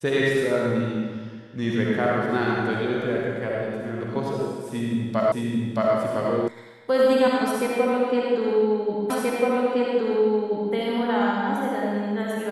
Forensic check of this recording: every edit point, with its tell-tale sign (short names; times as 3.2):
5.32 repeat of the last 0.62 s
6.48 sound cut off
9.1 repeat of the last 1.63 s